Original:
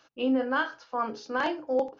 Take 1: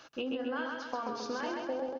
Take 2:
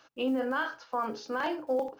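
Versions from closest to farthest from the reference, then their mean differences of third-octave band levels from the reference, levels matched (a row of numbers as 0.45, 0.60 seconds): 2, 1; 3.5, 8.0 decibels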